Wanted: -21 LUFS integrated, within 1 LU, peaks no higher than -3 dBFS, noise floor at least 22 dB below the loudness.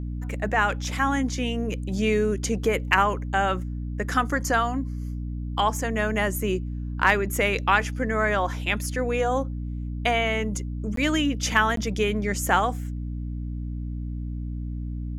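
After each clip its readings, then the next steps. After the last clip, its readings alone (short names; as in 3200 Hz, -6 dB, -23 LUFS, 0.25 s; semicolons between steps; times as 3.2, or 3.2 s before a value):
dropouts 2; longest dropout 13 ms; hum 60 Hz; harmonics up to 300 Hz; hum level -28 dBFS; loudness -25.5 LUFS; peak -5.0 dBFS; loudness target -21.0 LUFS
-> interpolate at 10.96/11.76, 13 ms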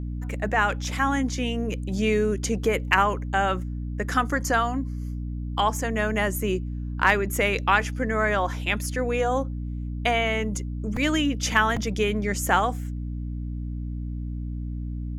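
dropouts 0; hum 60 Hz; harmonics up to 300 Hz; hum level -28 dBFS
-> de-hum 60 Hz, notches 5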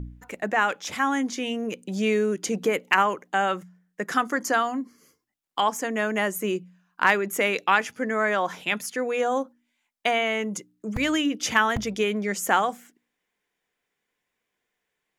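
hum none; loudness -25.0 LUFS; peak -5.5 dBFS; loudness target -21.0 LUFS
-> gain +4 dB; limiter -3 dBFS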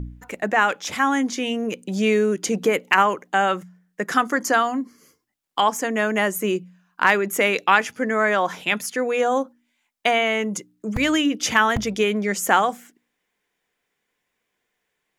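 loudness -21.5 LUFS; peak -3.0 dBFS; noise floor -77 dBFS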